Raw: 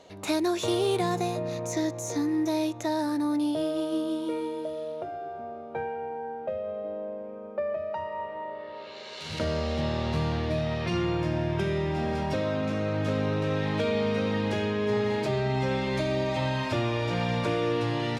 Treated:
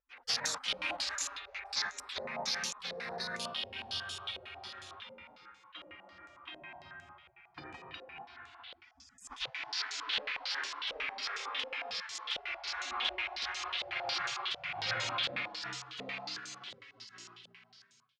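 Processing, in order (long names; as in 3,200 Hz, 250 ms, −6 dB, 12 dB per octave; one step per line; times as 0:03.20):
fade-out on the ending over 3.16 s
high-pass filter sweep 99 Hz → 770 Hz, 0:13.05–0:16.29
gate on every frequency bin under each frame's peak −30 dB weak
0:08.91–0:09.56: low shelf with overshoot 320 Hz +7.5 dB, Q 3
low-pass on a step sequencer 11 Hz 540–7,000 Hz
level +5.5 dB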